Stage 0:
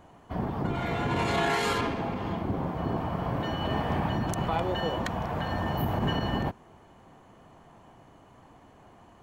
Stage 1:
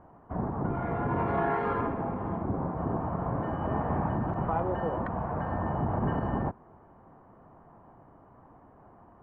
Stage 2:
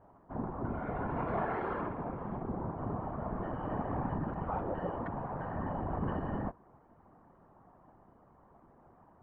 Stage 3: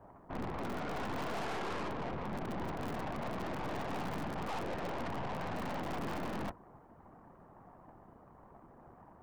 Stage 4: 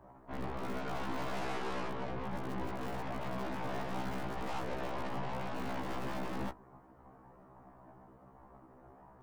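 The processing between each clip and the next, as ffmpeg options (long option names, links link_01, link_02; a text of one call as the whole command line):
ffmpeg -i in.wav -af "lowpass=frequency=1400:width=0.5412,lowpass=frequency=1400:width=1.3066,aemphasis=mode=production:type=75fm" out.wav
ffmpeg -i in.wav -af "afftfilt=real='hypot(re,im)*cos(2*PI*random(0))':imag='hypot(re,im)*sin(2*PI*random(1))':win_size=512:overlap=0.75" out.wav
ffmpeg -i in.wav -filter_complex "[0:a]acrossover=split=130[link_01][link_02];[link_01]aeval=exprs='(mod(106*val(0)+1,2)-1)/106':channel_layout=same[link_03];[link_03][link_02]amix=inputs=2:normalize=0,aeval=exprs='(tanh(178*val(0)+0.75)-tanh(0.75))/178':channel_layout=same,volume=8dB" out.wav
ffmpeg -i in.wav -af "afftfilt=real='re*1.73*eq(mod(b,3),0)':imag='im*1.73*eq(mod(b,3),0)':win_size=2048:overlap=0.75,volume=2dB" out.wav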